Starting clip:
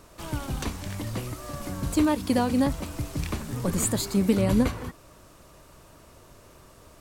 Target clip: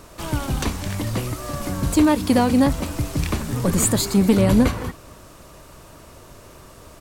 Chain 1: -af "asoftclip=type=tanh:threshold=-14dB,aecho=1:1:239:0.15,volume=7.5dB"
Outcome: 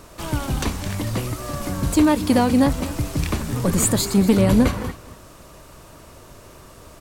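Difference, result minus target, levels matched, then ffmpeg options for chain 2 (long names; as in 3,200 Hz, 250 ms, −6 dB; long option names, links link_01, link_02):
echo-to-direct +7 dB
-af "asoftclip=type=tanh:threshold=-14dB,aecho=1:1:239:0.0668,volume=7.5dB"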